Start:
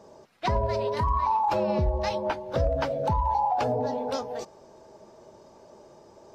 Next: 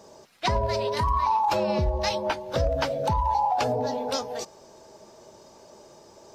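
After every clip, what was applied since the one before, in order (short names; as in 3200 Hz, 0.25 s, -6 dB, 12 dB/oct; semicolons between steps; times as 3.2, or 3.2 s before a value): high shelf 2400 Hz +10.5 dB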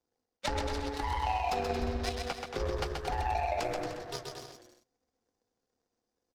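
power-law curve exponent 2; bouncing-ball echo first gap 0.13 s, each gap 0.75×, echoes 5; frequency shift -130 Hz; gain -2.5 dB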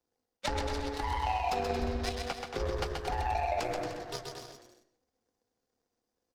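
reverb RT60 0.55 s, pre-delay 85 ms, DRR 14.5 dB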